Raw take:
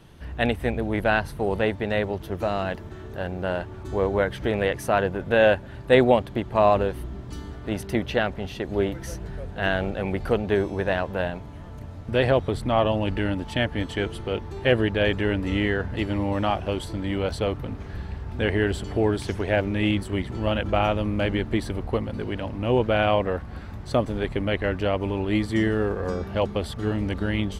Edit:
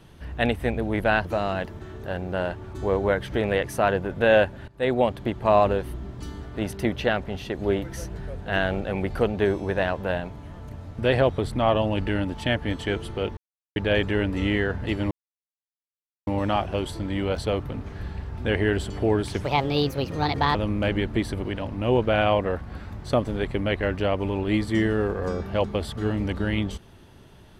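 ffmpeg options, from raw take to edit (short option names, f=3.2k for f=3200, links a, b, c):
-filter_complex "[0:a]asplit=9[a][b][c][d][e][f][g][h][i];[a]atrim=end=1.252[j];[b]atrim=start=2.348:end=5.78,asetpts=PTS-STARTPTS,afade=t=out:st=3.428:d=0.004:c=hsin:silence=0.112202[k];[c]atrim=start=5.78:end=14.47,asetpts=PTS-STARTPTS,afade=t=in:d=0.52:silence=0.112202,afade=t=out:st=8.686:d=0.004:c=hsin[l];[d]atrim=start=14.47:end=14.86,asetpts=PTS-STARTPTS,volume=0[m];[e]atrim=start=14.86:end=16.21,asetpts=PTS-STARTPTS,afade=t=in:d=0.004:c=hsin,afade=t=out:st=1.346:d=0.004:c=hsin,apad=pad_dur=1.16[n];[f]atrim=start=16.21:end=19.384,asetpts=PTS-STARTPTS,afade=t=in:d=0.004:c=hsin[o];[g]atrim=start=19.38:end=20.92,asetpts=PTS-STARTPTS,asetrate=61299,aresample=44100[p];[h]atrim=start=20.916:end=21.822[q];[i]atrim=start=22.258[r];[k][l][m][n][o]concat=n=5:v=0:a=1[s];[j][s]acrossfade=d=0.004:c1=hsin:c2=hsin[t];[t][p]acrossfade=d=0.004:c1=hsin:c2=hsin[u];[u][q]acrossfade=d=0.004:c1=hsin:c2=hsin[v];[v][r]acrossfade=d=0.004:c1=hsin:c2=hsin"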